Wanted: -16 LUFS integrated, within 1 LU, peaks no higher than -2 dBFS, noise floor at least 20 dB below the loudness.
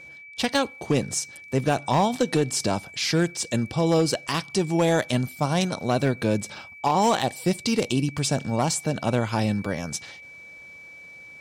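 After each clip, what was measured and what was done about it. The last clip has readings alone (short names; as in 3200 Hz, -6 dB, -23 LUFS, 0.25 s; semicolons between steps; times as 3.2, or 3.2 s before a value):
clipped 0.7%; flat tops at -14.0 dBFS; steady tone 2300 Hz; tone level -42 dBFS; loudness -24.5 LUFS; peak -14.0 dBFS; loudness target -16.0 LUFS
-> clip repair -14 dBFS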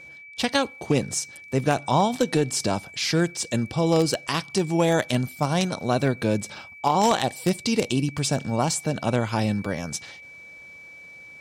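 clipped 0.0%; steady tone 2300 Hz; tone level -42 dBFS
-> notch 2300 Hz, Q 30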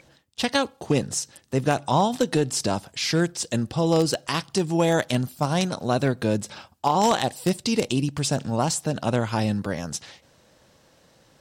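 steady tone none; loudness -24.5 LUFS; peak -5.5 dBFS; loudness target -16.0 LUFS
-> gain +8.5 dB; limiter -2 dBFS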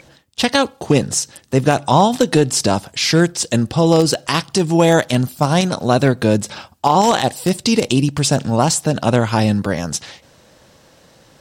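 loudness -16.5 LUFS; peak -2.0 dBFS; noise floor -51 dBFS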